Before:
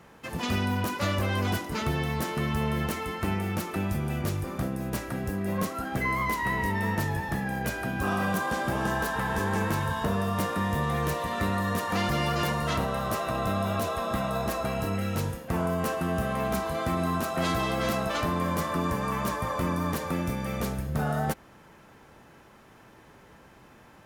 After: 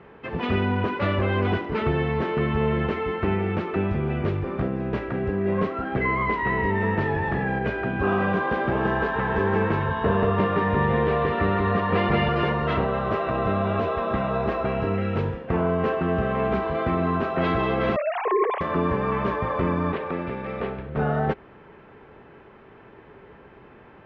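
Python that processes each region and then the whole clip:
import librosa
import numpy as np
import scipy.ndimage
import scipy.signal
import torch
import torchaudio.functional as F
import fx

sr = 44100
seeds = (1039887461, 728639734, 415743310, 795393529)

y = fx.chain(x, sr, fx.hum_notches(base_hz=50, count=9),
    fx.env_flatten(amount_pct=70), at=(7.01, 7.59))
y = fx.chain(y, sr, fx.lowpass(hz=5300.0, slope=24),
    fx.echo_single(ms=182, db=-3.0), at=(9.87, 12.29))
y = fx.chain(y, sr, fx.sine_speech(),
    fx.peak_eq(hz=1400.0, db=-9.5, octaves=0.43), at=(17.96, 18.61))
y = fx.chain(y, sr, fx.low_shelf(hz=260.0, db=-10.0),
    fx.resample_linear(factor=6), at=(19.92, 20.97))
y = scipy.signal.sosfilt(scipy.signal.butter(4, 2900.0, 'lowpass', fs=sr, output='sos'), y)
y = fx.peak_eq(y, sr, hz=410.0, db=10.0, octaves=0.32)
y = y * 10.0 ** (3.5 / 20.0)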